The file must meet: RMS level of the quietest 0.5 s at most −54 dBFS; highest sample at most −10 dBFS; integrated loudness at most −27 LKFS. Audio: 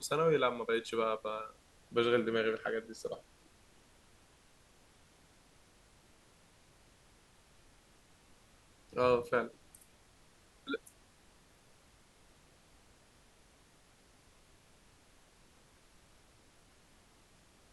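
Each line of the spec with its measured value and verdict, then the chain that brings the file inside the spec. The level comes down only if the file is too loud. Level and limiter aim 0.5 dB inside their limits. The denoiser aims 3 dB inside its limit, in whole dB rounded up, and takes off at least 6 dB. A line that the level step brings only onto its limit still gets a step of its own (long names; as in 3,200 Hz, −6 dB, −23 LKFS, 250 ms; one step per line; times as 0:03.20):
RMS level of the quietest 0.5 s −64 dBFS: in spec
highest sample −15.5 dBFS: in spec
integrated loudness −34.5 LKFS: in spec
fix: no processing needed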